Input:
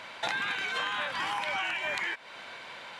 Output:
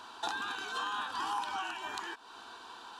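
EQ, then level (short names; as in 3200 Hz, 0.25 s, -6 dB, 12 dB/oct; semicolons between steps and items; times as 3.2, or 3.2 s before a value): fixed phaser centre 570 Hz, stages 6; 0.0 dB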